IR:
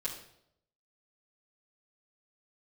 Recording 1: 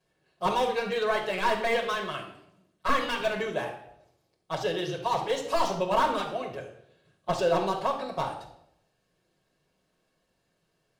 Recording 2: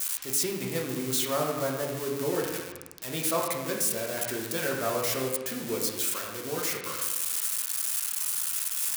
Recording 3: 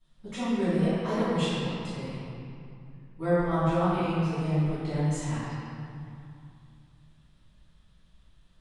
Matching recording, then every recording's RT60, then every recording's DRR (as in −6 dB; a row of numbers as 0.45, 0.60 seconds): 1; 0.75, 1.2, 2.5 seconds; −8.5, −2.0, −17.5 decibels